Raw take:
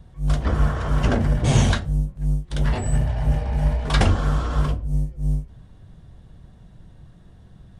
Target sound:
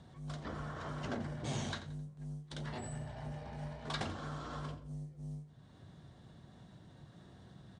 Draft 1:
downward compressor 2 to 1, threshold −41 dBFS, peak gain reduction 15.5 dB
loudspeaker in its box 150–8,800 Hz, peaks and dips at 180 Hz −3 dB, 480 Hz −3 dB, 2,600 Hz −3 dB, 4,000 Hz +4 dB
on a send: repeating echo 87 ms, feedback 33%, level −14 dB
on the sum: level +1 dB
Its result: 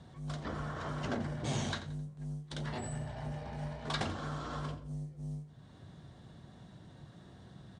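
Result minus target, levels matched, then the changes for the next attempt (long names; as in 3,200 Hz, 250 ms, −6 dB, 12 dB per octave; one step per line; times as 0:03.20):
downward compressor: peak gain reduction −3.5 dB
change: downward compressor 2 to 1, threshold −48 dBFS, peak gain reduction 19 dB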